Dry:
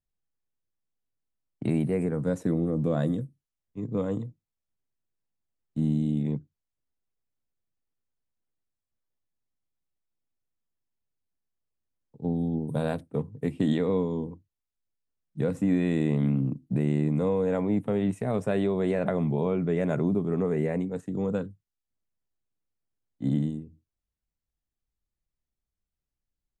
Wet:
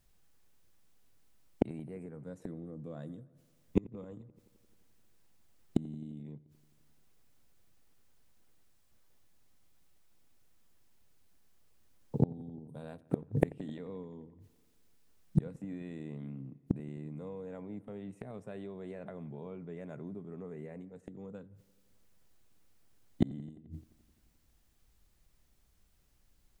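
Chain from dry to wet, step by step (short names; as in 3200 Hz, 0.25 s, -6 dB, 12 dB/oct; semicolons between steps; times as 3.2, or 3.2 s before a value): flipped gate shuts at -31 dBFS, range -36 dB; dark delay 87 ms, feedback 74%, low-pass 2800 Hz, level -23 dB; gain +18 dB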